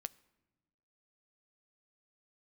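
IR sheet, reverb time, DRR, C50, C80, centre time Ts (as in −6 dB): non-exponential decay, 13.0 dB, 22.5 dB, 24.5 dB, 2 ms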